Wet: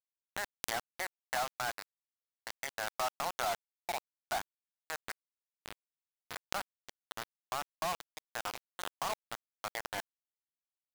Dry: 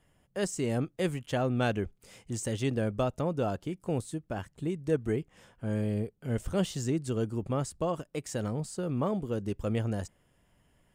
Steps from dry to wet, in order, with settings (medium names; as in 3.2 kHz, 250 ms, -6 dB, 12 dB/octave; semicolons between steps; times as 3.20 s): local Wiener filter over 15 samples; Chebyshev band-pass 700–2100 Hz, order 4; peak limiter -34 dBFS, peak gain reduction 11 dB; bit crusher 7-bit; swell ahead of each attack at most 37 dB/s; trim +7 dB